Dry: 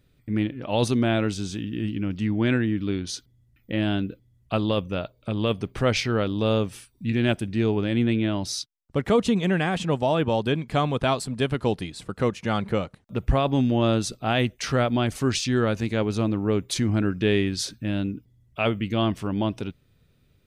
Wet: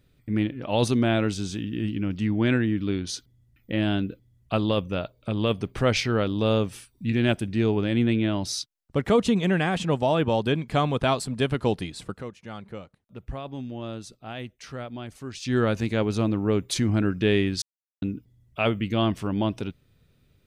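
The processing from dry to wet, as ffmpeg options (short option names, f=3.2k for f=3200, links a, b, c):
-filter_complex "[0:a]asplit=5[a][b][c][d][e];[a]atrim=end=12.23,asetpts=PTS-STARTPTS,afade=t=out:st=12.03:d=0.2:c=qsin:silence=0.211349[f];[b]atrim=start=12.23:end=15.4,asetpts=PTS-STARTPTS,volume=-13.5dB[g];[c]atrim=start=15.4:end=17.62,asetpts=PTS-STARTPTS,afade=t=in:d=0.2:c=qsin:silence=0.211349,afade=t=out:st=2.216:d=0.004:c=hsin[h];[d]atrim=start=17.62:end=18.02,asetpts=PTS-STARTPTS,volume=0[i];[e]atrim=start=18.02,asetpts=PTS-STARTPTS,afade=t=in:d=0.004:c=hsin[j];[f][g][h][i][j]concat=n=5:v=0:a=1"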